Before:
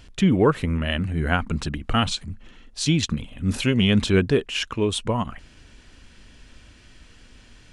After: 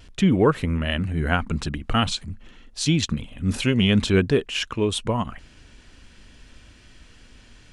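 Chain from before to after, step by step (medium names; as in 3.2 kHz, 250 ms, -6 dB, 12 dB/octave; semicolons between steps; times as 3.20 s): vibrato 0.49 Hz 7.9 cents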